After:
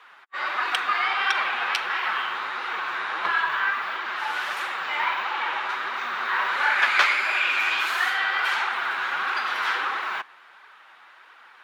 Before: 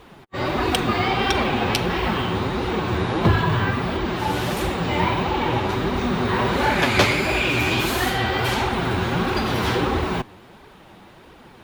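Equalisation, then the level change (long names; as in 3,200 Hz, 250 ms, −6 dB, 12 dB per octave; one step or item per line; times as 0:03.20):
high-pass with resonance 1,400 Hz, resonance Q 2
low-pass filter 2,400 Hz 6 dB per octave
0.0 dB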